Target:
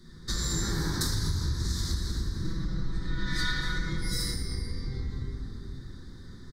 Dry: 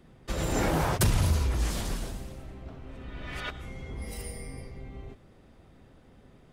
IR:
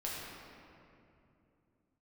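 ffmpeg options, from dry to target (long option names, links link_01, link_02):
-filter_complex "[0:a]firequalizer=gain_entry='entry(140,0);entry(400,-6);entry(650,-23);entry(1000,-6);entry(1800,2);entry(2700,-25);entry(3800,12);entry(10000,1)':delay=0.05:min_phase=1[link_01];[1:a]atrim=start_sample=2205,asetrate=48510,aresample=44100[link_02];[link_01][link_02]afir=irnorm=-1:irlink=0,acompressor=threshold=-35dB:ratio=5,asettb=1/sr,asplit=3[link_03][link_04][link_05];[link_03]atrim=end=2.444[link_06];[link_04]atrim=start=2.44:end=4.34,asetpts=PTS-STARTPTS,afade=type=in:duration=0.004:curve=qsin,afade=type=out:start_time=1.896:duration=0.004:curve=qsin,aecho=1:1:6.1:0.96,atrim=end_sample=83790[link_07];[link_05]atrim=start=4.336[link_08];[link_06][link_07]acrossfade=duration=0.004:curve1=hsin:curve2=qsin[link_09];[link_09][link_08]acrossfade=duration=0.004:curve1=qsin:curve2=hsin,volume=7.5dB"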